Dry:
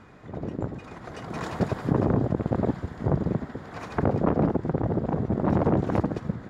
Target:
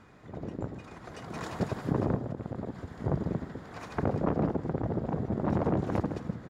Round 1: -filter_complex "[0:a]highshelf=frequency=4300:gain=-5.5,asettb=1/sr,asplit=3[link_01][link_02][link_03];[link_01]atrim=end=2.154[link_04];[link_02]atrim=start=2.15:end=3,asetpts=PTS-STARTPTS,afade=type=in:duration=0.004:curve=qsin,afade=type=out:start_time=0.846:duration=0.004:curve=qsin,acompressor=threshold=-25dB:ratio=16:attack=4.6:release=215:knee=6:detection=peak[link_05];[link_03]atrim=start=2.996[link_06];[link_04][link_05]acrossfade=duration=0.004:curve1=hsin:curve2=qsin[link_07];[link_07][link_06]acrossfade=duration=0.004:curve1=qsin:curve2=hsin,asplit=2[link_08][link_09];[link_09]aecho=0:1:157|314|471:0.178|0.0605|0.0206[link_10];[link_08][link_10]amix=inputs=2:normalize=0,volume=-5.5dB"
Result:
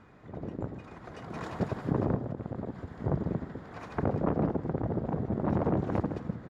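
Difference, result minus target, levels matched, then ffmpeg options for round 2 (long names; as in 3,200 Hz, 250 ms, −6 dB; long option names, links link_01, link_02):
8,000 Hz band −7.5 dB
-filter_complex "[0:a]highshelf=frequency=4300:gain=5,asettb=1/sr,asplit=3[link_01][link_02][link_03];[link_01]atrim=end=2.154[link_04];[link_02]atrim=start=2.15:end=3,asetpts=PTS-STARTPTS,afade=type=in:duration=0.004:curve=qsin,afade=type=out:start_time=0.846:duration=0.004:curve=qsin,acompressor=threshold=-25dB:ratio=16:attack=4.6:release=215:knee=6:detection=peak[link_05];[link_03]atrim=start=2.996[link_06];[link_04][link_05]acrossfade=duration=0.004:curve1=hsin:curve2=qsin[link_07];[link_07][link_06]acrossfade=duration=0.004:curve1=qsin:curve2=hsin,asplit=2[link_08][link_09];[link_09]aecho=0:1:157|314|471:0.178|0.0605|0.0206[link_10];[link_08][link_10]amix=inputs=2:normalize=0,volume=-5.5dB"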